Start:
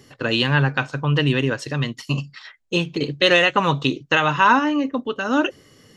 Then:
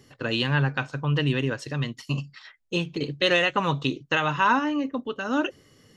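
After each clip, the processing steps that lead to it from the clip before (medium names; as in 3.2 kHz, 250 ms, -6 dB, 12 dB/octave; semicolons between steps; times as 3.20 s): bass shelf 140 Hz +3.5 dB; trim -6 dB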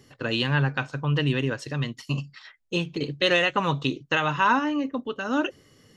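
no audible change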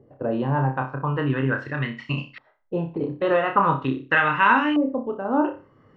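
flutter echo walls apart 5.2 m, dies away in 0.31 s; LFO low-pass saw up 0.42 Hz 580–2700 Hz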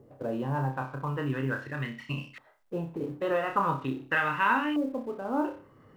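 companding laws mixed up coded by mu; trim -8 dB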